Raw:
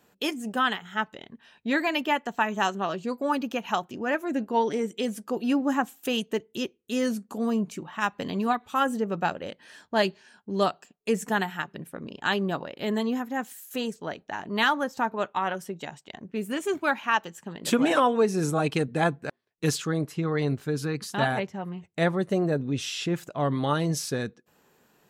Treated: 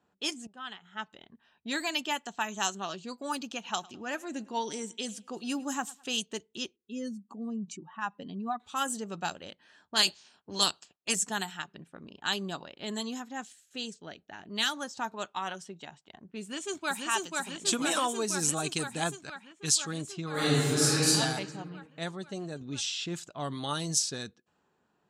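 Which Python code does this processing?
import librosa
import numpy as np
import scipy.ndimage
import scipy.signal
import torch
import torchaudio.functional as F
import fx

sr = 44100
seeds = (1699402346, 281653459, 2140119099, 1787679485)

y = fx.echo_feedback(x, sr, ms=106, feedback_pct=38, wet_db=-22.5, at=(3.65, 6.08), fade=0.02)
y = fx.spec_expand(y, sr, power=1.7, at=(6.76, 8.6))
y = fx.spec_clip(y, sr, under_db=17, at=(9.94, 11.14), fade=0.02)
y = fx.peak_eq(y, sr, hz=1000.0, db=-8.5, octaves=0.77, at=(13.45, 14.77))
y = fx.echo_throw(y, sr, start_s=16.41, length_s=0.65, ms=490, feedback_pct=80, wet_db=-2.0)
y = fx.peak_eq(y, sr, hz=440.0, db=-5.0, octaves=2.2, at=(19.15, 19.8))
y = fx.reverb_throw(y, sr, start_s=20.31, length_s=0.76, rt60_s=1.8, drr_db=-11.5)
y = fx.edit(y, sr, fx.fade_in_from(start_s=0.47, length_s=0.78, floor_db=-19.5),
    fx.clip_gain(start_s=21.87, length_s=0.74, db=-4.0), tone=tone)
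y = scipy.signal.sosfilt(scipy.signal.butter(2, 76.0, 'highpass', fs=sr, output='sos'), y)
y = fx.env_lowpass(y, sr, base_hz=1400.0, full_db=-20.5)
y = fx.graphic_eq(y, sr, hz=(125, 250, 500, 1000, 2000, 4000, 8000), db=(-9, -6, -10, -4, -8, 3, 12))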